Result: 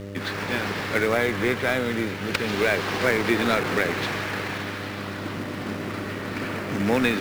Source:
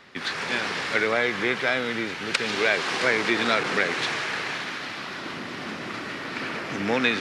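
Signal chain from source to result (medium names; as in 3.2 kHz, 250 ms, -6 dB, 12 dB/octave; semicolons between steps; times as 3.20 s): mains buzz 100 Hz, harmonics 6, -41 dBFS -1 dB/octave; companded quantiser 4-bit; tilt EQ -2 dB/octave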